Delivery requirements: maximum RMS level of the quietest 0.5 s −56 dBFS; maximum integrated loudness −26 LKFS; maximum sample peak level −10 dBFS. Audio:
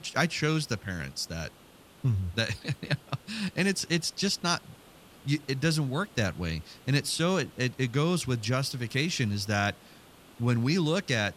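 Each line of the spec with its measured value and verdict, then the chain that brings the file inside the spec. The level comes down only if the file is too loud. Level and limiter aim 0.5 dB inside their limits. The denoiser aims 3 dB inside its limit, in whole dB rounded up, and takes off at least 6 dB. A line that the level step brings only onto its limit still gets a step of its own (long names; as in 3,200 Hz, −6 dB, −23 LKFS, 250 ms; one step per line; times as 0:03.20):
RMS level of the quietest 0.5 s −55 dBFS: out of spec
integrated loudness −29.5 LKFS: in spec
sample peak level −11.5 dBFS: in spec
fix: broadband denoise 6 dB, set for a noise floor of −55 dBFS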